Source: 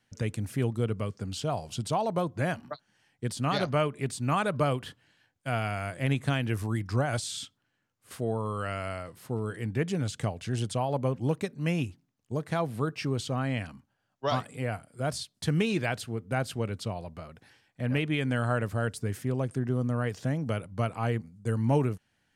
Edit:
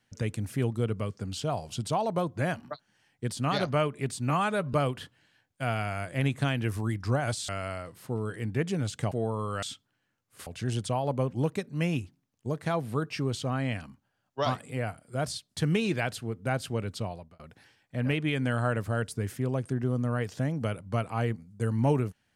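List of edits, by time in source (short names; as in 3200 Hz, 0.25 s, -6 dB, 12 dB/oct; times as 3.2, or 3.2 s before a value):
4.3–4.59 stretch 1.5×
7.34–8.18 swap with 8.69–10.32
16.94–17.25 fade out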